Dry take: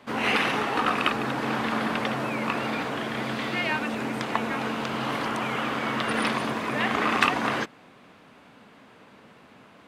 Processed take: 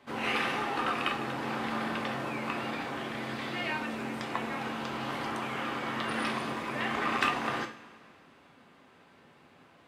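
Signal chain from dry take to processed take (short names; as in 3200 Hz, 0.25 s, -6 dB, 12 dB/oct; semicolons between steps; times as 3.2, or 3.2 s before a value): two-slope reverb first 0.38 s, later 2.3 s, from -18 dB, DRR 3 dB; gain -8 dB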